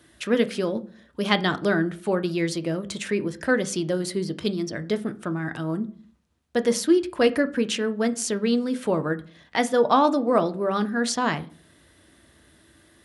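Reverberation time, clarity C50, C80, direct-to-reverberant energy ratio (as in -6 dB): 0.45 s, 18.5 dB, 23.5 dB, 10.0 dB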